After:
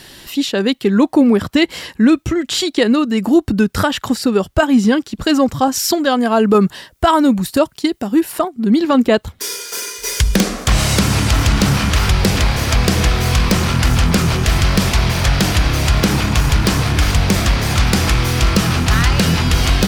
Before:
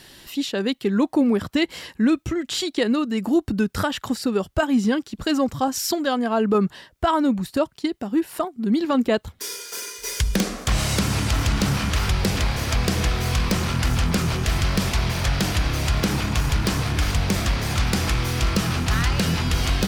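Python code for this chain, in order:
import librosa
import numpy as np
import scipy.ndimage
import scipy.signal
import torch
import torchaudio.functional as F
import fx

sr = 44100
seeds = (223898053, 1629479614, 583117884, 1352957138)

y = fx.high_shelf(x, sr, hz=6100.0, db=8.0, at=(6.18, 8.32))
y = y * librosa.db_to_amplitude(7.5)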